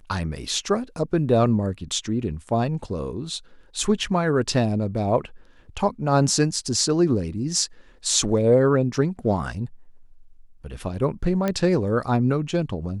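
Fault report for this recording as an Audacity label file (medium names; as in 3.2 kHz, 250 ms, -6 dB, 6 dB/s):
11.480000	11.480000	pop -11 dBFS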